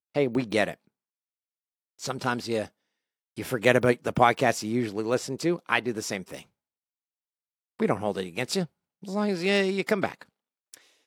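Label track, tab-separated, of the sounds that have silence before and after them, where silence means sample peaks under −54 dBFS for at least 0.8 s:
1.990000	6.460000	sound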